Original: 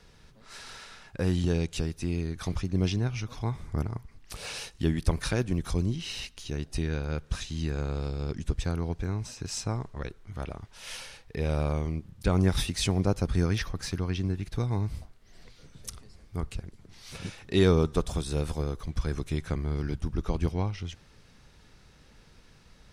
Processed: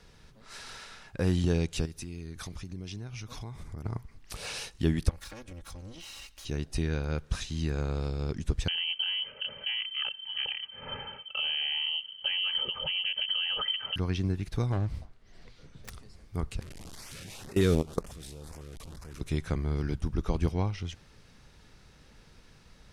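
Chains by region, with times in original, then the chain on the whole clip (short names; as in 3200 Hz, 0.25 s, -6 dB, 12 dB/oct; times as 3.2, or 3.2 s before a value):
1.85–3.85 high shelf 3900 Hz +6 dB + compressor 5:1, threshold -37 dBFS + mismatched tape noise reduction decoder only
5.09–6.45 minimum comb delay 3.6 ms + bell 250 Hz -8.5 dB 1.6 oct + compressor 5:1, threshold -42 dBFS
8.68–13.96 comb 2.7 ms, depth 89% + compressor, threshold -28 dBFS + inverted band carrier 3100 Hz
14.72–15.9 self-modulated delay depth 0.6 ms + high shelf 7600 Hz -11.5 dB
16.61–19.21 delta modulation 64 kbps, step -31 dBFS + level quantiser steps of 22 dB + LFO notch saw up 2 Hz 640–4500 Hz
whole clip: dry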